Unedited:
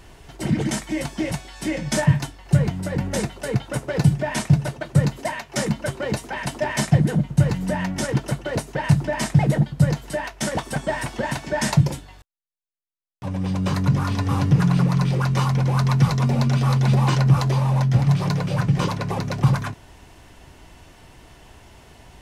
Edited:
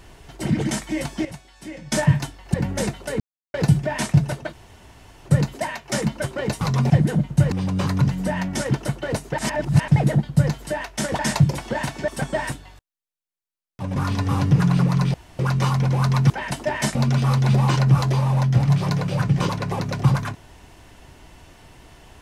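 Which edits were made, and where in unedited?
0:01.25–0:01.92: clip gain −10.5 dB
0:02.54–0:02.90: remove
0:03.56–0:03.90: silence
0:04.89: splice in room tone 0.72 s
0:06.25–0:06.90: swap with 0:16.05–0:16.34
0:08.81–0:09.31: reverse
0:10.62–0:11.06: swap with 0:11.56–0:11.95
0:13.39–0:13.96: move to 0:07.52
0:15.14: splice in room tone 0.25 s

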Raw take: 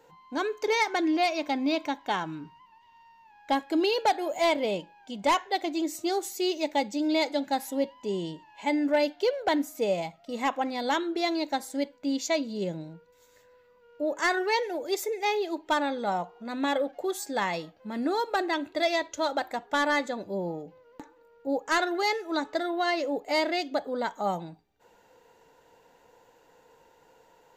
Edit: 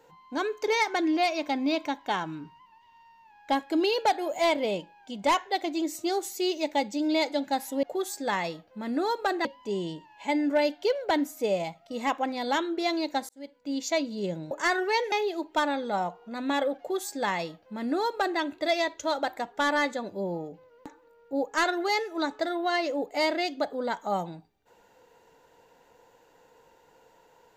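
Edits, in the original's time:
0:11.67–0:12.28: fade in
0:12.89–0:14.10: remove
0:14.71–0:15.26: remove
0:16.92–0:18.54: duplicate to 0:07.83

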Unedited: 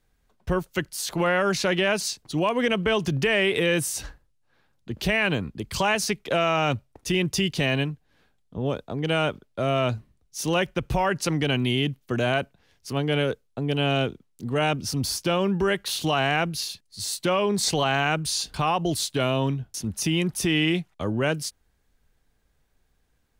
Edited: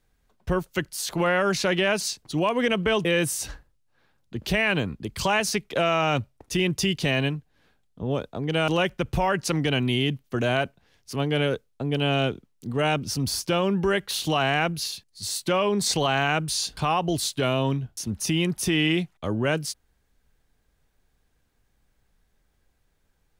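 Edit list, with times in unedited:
0:03.05–0:03.60: remove
0:09.23–0:10.45: remove

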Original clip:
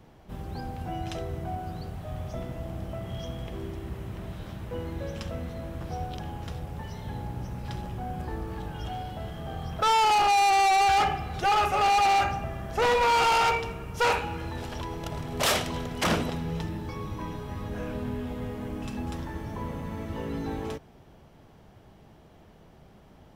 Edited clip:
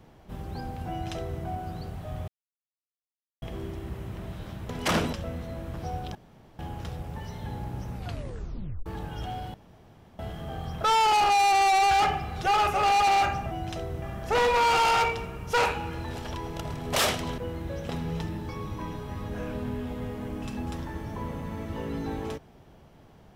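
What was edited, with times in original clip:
0:00.90–0:01.41: duplicate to 0:12.49
0:02.28–0:03.42: silence
0:04.69–0:05.20: swap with 0:15.85–0:16.29
0:06.22: splice in room tone 0.44 s
0:07.58: tape stop 0.91 s
0:09.17: splice in room tone 0.65 s

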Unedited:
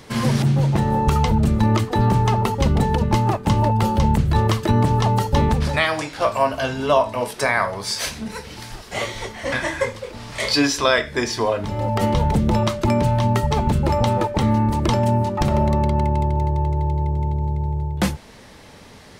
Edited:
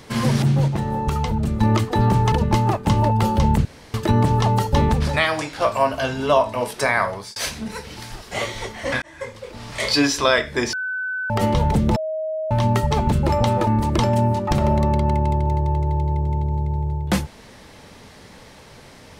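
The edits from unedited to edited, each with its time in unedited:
0:00.68–0:01.61: clip gain −4.5 dB
0:02.32–0:02.92: remove
0:04.25–0:04.54: fill with room tone
0:07.71–0:07.96: fade out
0:09.62–0:10.26: fade in linear
0:11.33–0:11.90: beep over 1,510 Hz −23 dBFS
0:12.56–0:13.11: beep over 630 Hz −22.5 dBFS
0:14.27–0:14.57: remove

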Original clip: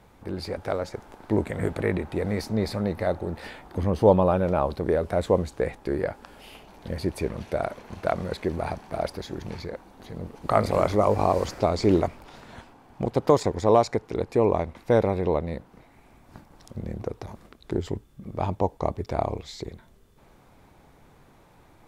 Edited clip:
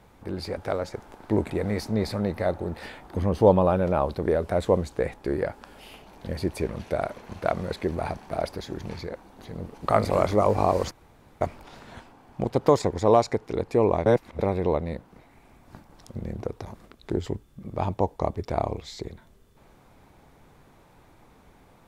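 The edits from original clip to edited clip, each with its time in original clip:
0:01.50–0:02.11: remove
0:11.52–0:12.02: fill with room tone
0:14.67–0:15.00: reverse

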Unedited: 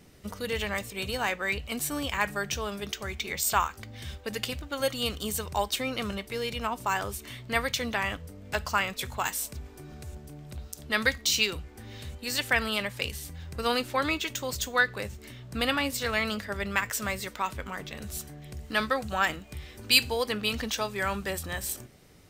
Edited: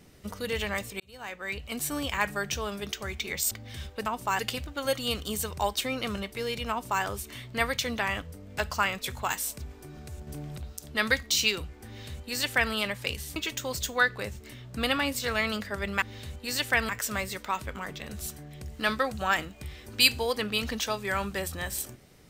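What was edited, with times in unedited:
0:01.00–0:01.89: fade in
0:03.51–0:03.79: remove
0:06.65–0:06.98: duplicate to 0:04.34
0:10.22–0:10.52: clip gain +6 dB
0:11.81–0:12.68: duplicate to 0:16.80
0:13.31–0:14.14: remove

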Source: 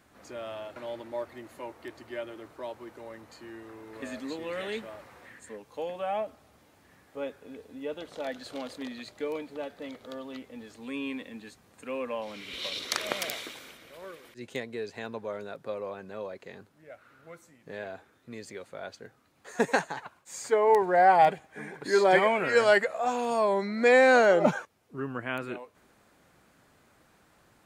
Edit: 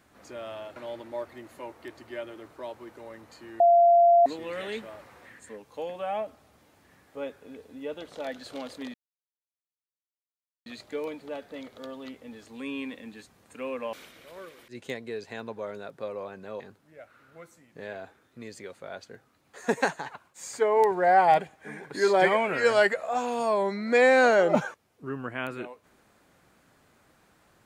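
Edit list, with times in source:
0:03.60–0:04.26: beep over 689 Hz −14.5 dBFS
0:08.94: splice in silence 1.72 s
0:12.21–0:13.59: remove
0:16.26–0:16.51: remove

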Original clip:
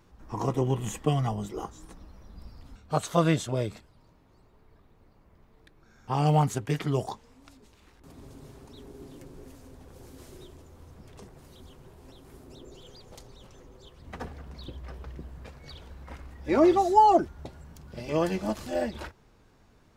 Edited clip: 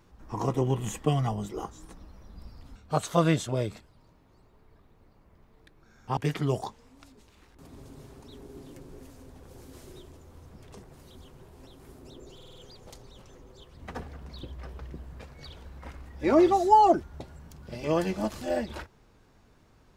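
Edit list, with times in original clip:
0:06.17–0:06.62: remove
0:12.80: stutter 0.05 s, 5 plays

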